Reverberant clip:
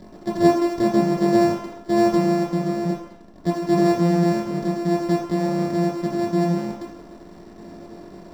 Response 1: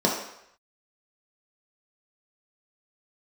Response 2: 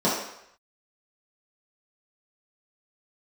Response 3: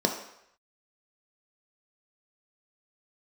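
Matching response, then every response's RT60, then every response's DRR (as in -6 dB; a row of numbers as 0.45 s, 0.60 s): 1; 0.75 s, 0.75 s, 0.75 s; -3.0 dB, -9.5 dB, 2.5 dB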